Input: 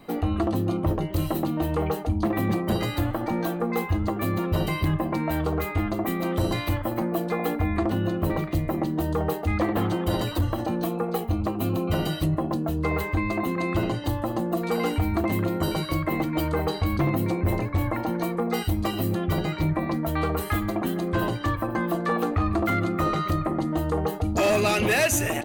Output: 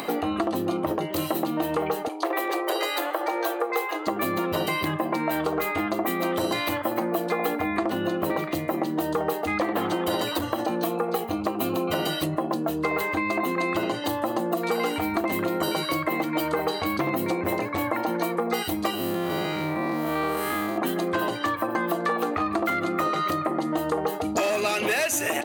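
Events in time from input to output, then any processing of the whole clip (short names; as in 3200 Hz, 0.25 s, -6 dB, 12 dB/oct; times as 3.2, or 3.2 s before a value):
2.08–4.07 steep high-pass 350 Hz 48 dB/oct
18.95–20.78 time blur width 0.167 s
whole clip: upward compressor, threshold -28 dBFS; Bessel high-pass 370 Hz, order 2; compressor, threshold -28 dBFS; gain +6.5 dB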